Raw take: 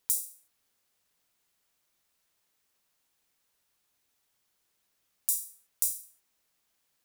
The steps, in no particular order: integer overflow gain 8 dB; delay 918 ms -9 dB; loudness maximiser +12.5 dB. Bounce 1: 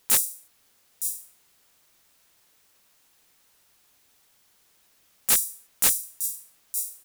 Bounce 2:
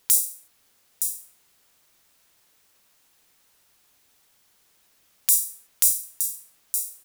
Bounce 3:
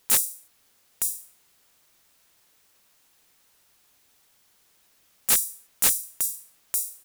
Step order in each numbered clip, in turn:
loudness maximiser > delay > integer overflow; delay > integer overflow > loudness maximiser; delay > loudness maximiser > integer overflow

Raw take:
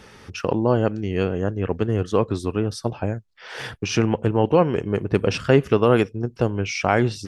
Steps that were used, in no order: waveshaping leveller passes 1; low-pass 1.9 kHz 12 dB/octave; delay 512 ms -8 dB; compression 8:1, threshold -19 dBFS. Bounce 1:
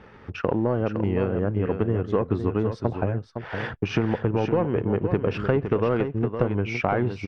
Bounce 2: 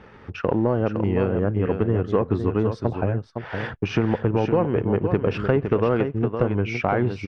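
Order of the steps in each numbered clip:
waveshaping leveller > low-pass > compression > delay; compression > delay > waveshaping leveller > low-pass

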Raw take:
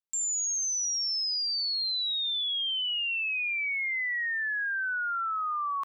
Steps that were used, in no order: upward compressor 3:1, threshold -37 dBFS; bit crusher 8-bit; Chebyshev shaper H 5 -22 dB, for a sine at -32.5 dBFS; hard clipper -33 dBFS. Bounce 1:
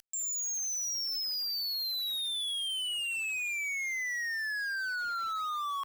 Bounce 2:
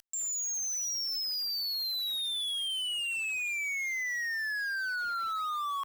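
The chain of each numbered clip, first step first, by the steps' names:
upward compressor > bit crusher > Chebyshev shaper > hard clipper; hard clipper > upward compressor > bit crusher > Chebyshev shaper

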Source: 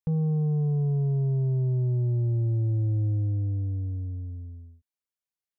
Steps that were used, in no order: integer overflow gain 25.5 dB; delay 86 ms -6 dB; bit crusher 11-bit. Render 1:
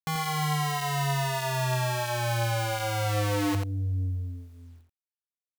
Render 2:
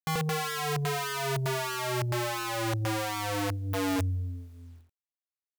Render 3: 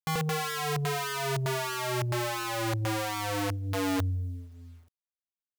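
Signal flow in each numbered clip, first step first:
integer overflow > bit crusher > delay; bit crusher > delay > integer overflow; delay > integer overflow > bit crusher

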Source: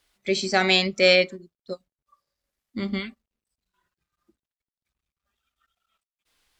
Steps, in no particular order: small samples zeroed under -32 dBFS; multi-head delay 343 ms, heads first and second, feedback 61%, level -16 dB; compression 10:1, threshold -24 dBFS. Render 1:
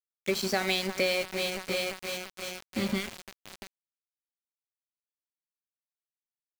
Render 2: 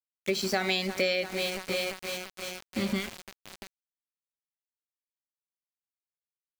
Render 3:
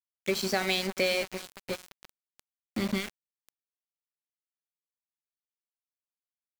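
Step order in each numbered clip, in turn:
multi-head delay > compression > small samples zeroed; multi-head delay > small samples zeroed > compression; compression > multi-head delay > small samples zeroed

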